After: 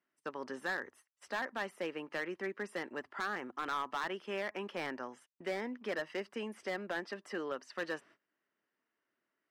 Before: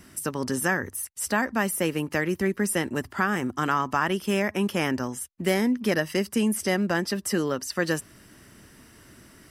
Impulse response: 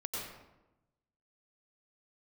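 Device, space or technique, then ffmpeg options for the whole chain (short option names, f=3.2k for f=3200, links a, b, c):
walkie-talkie: -af "highpass=450,lowpass=2.6k,asoftclip=type=hard:threshold=-22dB,agate=range=-21dB:threshold=-51dB:ratio=16:detection=peak,volume=-8dB"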